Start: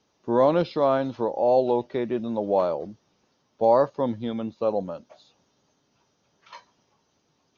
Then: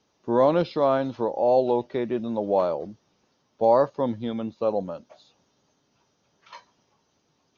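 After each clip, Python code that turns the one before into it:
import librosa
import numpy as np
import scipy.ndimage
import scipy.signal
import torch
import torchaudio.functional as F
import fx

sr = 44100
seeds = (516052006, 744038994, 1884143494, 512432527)

y = x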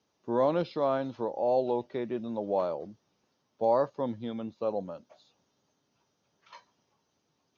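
y = scipy.signal.sosfilt(scipy.signal.butter(2, 57.0, 'highpass', fs=sr, output='sos'), x)
y = y * librosa.db_to_amplitude(-6.5)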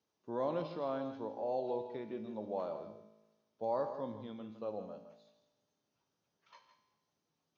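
y = fx.comb_fb(x, sr, f0_hz=54.0, decay_s=1.1, harmonics='all', damping=0.0, mix_pct=70)
y = y + 10.0 ** (-10.5 / 20.0) * np.pad(y, (int(162 * sr / 1000.0), 0))[:len(y)]
y = y * librosa.db_to_amplitude(-1.5)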